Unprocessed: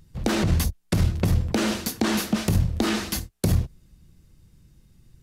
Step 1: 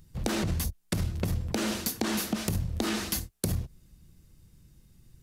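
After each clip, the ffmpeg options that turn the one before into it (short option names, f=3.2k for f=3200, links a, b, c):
-af "highshelf=f=7.8k:g=6.5,acompressor=threshold=-23dB:ratio=6,volume=-2.5dB"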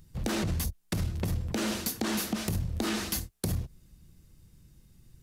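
-af "asoftclip=type=tanh:threshold=-19.5dB"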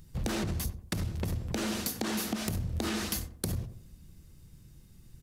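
-filter_complex "[0:a]acompressor=threshold=-32dB:ratio=6,asplit=2[a][b];[b]adelay=92,lowpass=f=1k:p=1,volume=-9.5dB,asplit=2[c][d];[d]adelay=92,lowpass=f=1k:p=1,volume=0.44,asplit=2[e][f];[f]adelay=92,lowpass=f=1k:p=1,volume=0.44,asplit=2[g][h];[h]adelay=92,lowpass=f=1k:p=1,volume=0.44,asplit=2[i][j];[j]adelay=92,lowpass=f=1k:p=1,volume=0.44[k];[a][c][e][g][i][k]amix=inputs=6:normalize=0,volume=2.5dB"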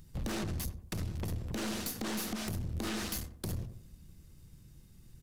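-af "aeval=exprs='(tanh(35.5*val(0)+0.45)-tanh(0.45))/35.5':c=same"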